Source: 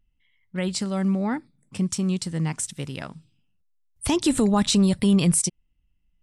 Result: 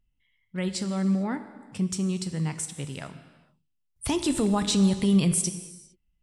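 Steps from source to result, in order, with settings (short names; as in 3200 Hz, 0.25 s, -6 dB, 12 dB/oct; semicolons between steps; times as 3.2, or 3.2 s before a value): non-linear reverb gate 0.48 s falling, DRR 9 dB; gain -4 dB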